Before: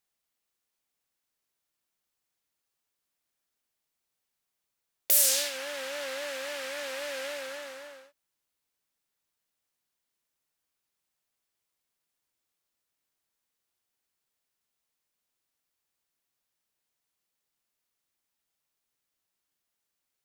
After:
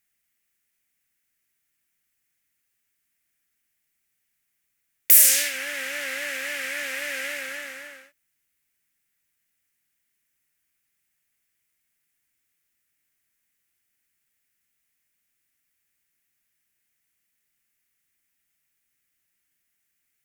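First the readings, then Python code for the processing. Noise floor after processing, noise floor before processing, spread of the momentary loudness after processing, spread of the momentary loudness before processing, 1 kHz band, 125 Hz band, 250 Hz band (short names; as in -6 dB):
-76 dBFS, -84 dBFS, 21 LU, 20 LU, +0.5 dB, n/a, +4.5 dB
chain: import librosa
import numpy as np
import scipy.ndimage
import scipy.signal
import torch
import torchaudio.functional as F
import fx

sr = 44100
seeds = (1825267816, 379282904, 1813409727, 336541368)

y = fx.graphic_eq_10(x, sr, hz=(500, 1000, 2000, 4000, 16000), db=(-8, -11, 9, -8, 3))
y = F.gain(torch.from_numpy(y), 7.0).numpy()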